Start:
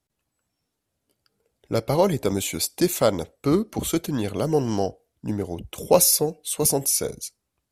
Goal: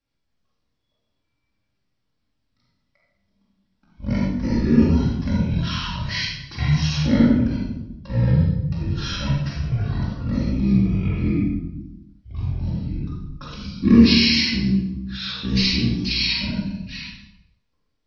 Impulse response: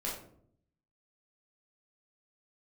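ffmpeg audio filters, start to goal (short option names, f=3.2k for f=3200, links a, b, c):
-filter_complex "[1:a]atrim=start_sample=2205,afade=t=out:st=0.42:d=0.01,atrim=end_sample=18963,asetrate=48510,aresample=44100[a];[0:a][a]afir=irnorm=-1:irlink=0,asetrate=18846,aresample=44100,volume=-1dB"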